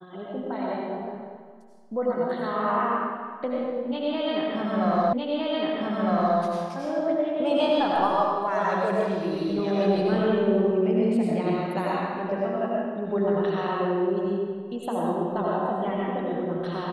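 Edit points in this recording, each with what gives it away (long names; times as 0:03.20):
0:05.13: the same again, the last 1.26 s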